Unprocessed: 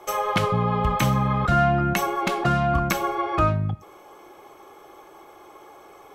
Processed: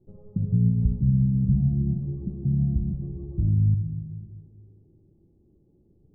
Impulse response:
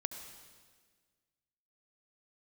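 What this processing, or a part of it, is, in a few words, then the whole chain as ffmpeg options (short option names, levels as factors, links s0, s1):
club heard from the street: -filter_complex "[0:a]alimiter=limit=0.178:level=0:latency=1:release=180,lowpass=f=200:w=0.5412,lowpass=f=200:w=1.3066[s0];[1:a]atrim=start_sample=2205[s1];[s0][s1]afir=irnorm=-1:irlink=0,volume=2.24"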